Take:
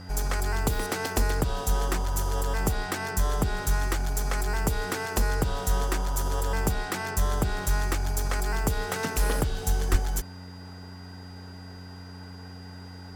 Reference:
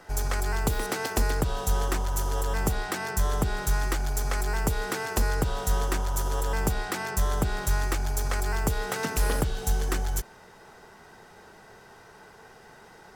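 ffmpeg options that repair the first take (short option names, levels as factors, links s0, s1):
-filter_complex "[0:a]bandreject=f=90.8:t=h:w=4,bandreject=f=181.6:t=h:w=4,bandreject=f=272.4:t=h:w=4,bandreject=f=4800:w=30,asplit=3[s0][s1][s2];[s0]afade=t=out:st=9.91:d=0.02[s3];[s1]highpass=f=140:w=0.5412,highpass=f=140:w=1.3066,afade=t=in:st=9.91:d=0.02,afade=t=out:st=10.03:d=0.02[s4];[s2]afade=t=in:st=10.03:d=0.02[s5];[s3][s4][s5]amix=inputs=3:normalize=0"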